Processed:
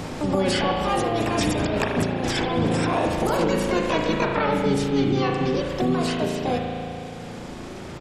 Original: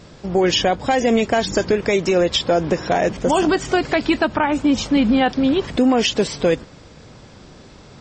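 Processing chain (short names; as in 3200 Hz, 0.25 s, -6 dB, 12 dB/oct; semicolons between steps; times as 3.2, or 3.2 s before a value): Doppler pass-by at 2.03, 6 m/s, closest 2.8 m; high shelf 3500 Hz -3 dB; negative-ratio compressor -29 dBFS, ratio -1; harmoniser -12 st -7 dB, -7 st -5 dB, +7 st 0 dB; spring tank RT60 1.5 s, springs 36 ms, chirp 45 ms, DRR 1 dB; three-band squash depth 70%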